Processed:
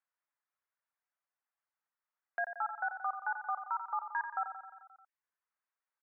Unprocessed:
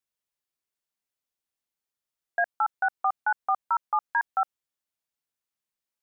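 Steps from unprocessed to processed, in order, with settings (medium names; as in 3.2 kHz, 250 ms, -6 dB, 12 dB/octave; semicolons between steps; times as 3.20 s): low-pass 1.7 kHz 24 dB/octave; reverb removal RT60 0.63 s; high-pass 710 Hz 12 dB/octave; peak limiter -26.5 dBFS, peak gain reduction 9 dB; on a send: feedback delay 88 ms, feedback 60%, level -9 dB; on the sum: tape noise reduction on one side only encoder only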